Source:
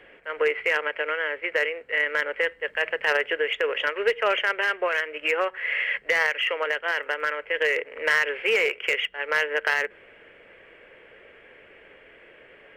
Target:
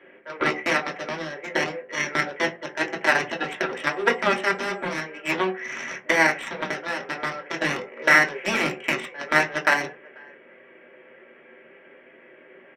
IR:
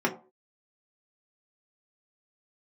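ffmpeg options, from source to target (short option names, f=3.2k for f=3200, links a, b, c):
-filter_complex "[0:a]asplit=2[a][b];[b]asoftclip=type=hard:threshold=-22dB,volume=-11dB[c];[a][c]amix=inputs=2:normalize=0,asplit=2[d][e];[e]adelay=489.8,volume=-20dB,highshelf=f=4k:g=-11[f];[d][f]amix=inputs=2:normalize=0,asettb=1/sr,asplit=3[g][h][i];[g]atrim=end=3.824[j];[h]atrim=start=3.82:end=4.9,asetpts=PTS-STARTPTS,afade=t=in:d=0.004:c=qsin,afade=t=out:st=1.076:d=0.004:c=qsin,aeval=exprs='val(0)+0.00251*sin(2*PI*7700*n/s)':c=same[k];[i]atrim=start=4.896[l];[j][k]acrossfade=d=0.004:c1=hsin:c2=qsin[m];[m][l]acrossfade=d=0.004:c1=qsin:c2=hsin,aeval=exprs='0.316*(cos(1*acos(clip(val(0)/0.316,-1,1)))-cos(1*PI/2))+0.126*(cos(3*acos(clip(val(0)/0.316,-1,1)))-cos(3*PI/2))+0.00316*(cos(4*acos(clip(val(0)/0.316,-1,1)))-cos(4*PI/2))+0.00251*(cos(7*acos(clip(val(0)/0.316,-1,1)))-cos(7*PI/2))':c=same[n];[1:a]atrim=start_sample=2205[o];[n][o]afir=irnorm=-1:irlink=0,volume=-2dB"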